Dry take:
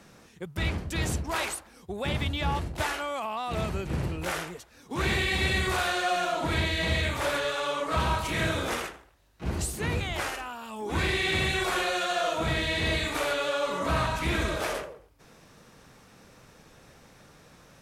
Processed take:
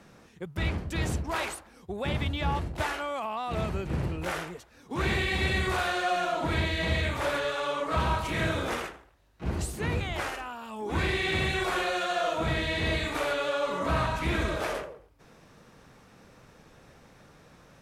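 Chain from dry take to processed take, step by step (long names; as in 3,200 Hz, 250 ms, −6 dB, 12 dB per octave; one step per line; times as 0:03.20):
high-shelf EQ 3,600 Hz −6.5 dB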